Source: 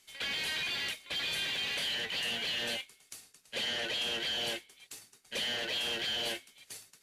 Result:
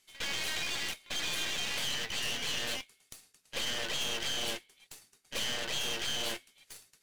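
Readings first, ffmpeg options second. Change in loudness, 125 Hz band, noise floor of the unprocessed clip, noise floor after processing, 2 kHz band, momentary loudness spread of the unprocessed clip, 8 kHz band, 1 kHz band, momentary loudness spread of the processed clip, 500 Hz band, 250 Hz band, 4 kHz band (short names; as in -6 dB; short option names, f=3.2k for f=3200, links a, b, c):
-0.5 dB, +3.5 dB, -66 dBFS, -71 dBFS, -1.5 dB, 17 LU, +6.0 dB, +2.0 dB, 20 LU, -1.0 dB, +0.5 dB, -1.5 dB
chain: -af "acrusher=bits=7:mode=log:mix=0:aa=0.000001,aeval=exprs='0.0596*(cos(1*acos(clip(val(0)/0.0596,-1,1)))-cos(1*PI/2))+0.00422*(cos(3*acos(clip(val(0)/0.0596,-1,1)))-cos(3*PI/2))+0.015*(cos(4*acos(clip(val(0)/0.0596,-1,1)))-cos(4*PI/2))+0.00188*(cos(7*acos(clip(val(0)/0.0596,-1,1)))-cos(7*PI/2))':c=same"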